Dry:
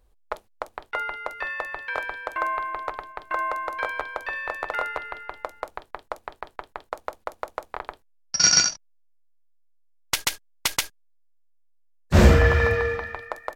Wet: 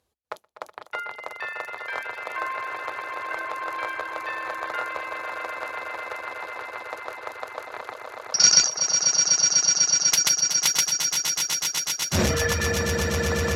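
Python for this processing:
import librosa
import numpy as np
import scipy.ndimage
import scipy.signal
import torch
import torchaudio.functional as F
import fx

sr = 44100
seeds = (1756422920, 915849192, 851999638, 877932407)

p1 = scipy.signal.sosfilt(scipy.signal.butter(2, 11000.0, 'lowpass', fs=sr, output='sos'), x)
p2 = fx.peak_eq(p1, sr, hz=8700.0, db=-8.0, octaves=0.29)
p3 = p2 + fx.echo_swell(p2, sr, ms=124, loudest=8, wet_db=-8.5, dry=0)
p4 = fx.dereverb_blind(p3, sr, rt60_s=0.51)
p5 = scipy.signal.sosfilt(scipy.signal.butter(4, 83.0, 'highpass', fs=sr, output='sos'), p4)
p6 = fx.high_shelf(p5, sr, hz=3600.0, db=10.5)
p7 = fx.transformer_sat(p6, sr, knee_hz=630.0)
y = p7 * 10.0 ** (-4.5 / 20.0)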